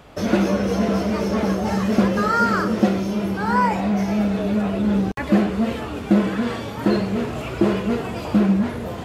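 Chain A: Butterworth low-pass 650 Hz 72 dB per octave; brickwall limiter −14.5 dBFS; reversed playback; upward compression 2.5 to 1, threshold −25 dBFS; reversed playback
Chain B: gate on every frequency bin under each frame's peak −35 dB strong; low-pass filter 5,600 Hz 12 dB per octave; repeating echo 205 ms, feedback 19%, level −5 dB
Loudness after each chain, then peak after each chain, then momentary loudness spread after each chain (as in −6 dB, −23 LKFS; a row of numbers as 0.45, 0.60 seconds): −24.0, −19.5 LKFS; −14.5, −4.0 dBFS; 4, 5 LU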